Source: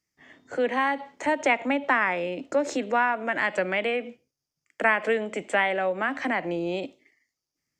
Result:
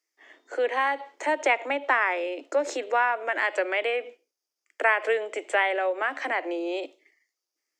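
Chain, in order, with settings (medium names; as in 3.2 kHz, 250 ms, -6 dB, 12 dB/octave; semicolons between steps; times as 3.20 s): steep high-pass 320 Hz 48 dB/octave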